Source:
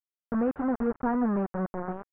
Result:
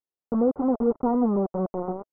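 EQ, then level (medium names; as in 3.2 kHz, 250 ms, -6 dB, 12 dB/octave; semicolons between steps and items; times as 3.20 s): Savitzky-Golay filter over 65 samples; peaking EQ 450 Hz +9 dB 2.4 oct; band-stop 640 Hz, Q 12; -2.0 dB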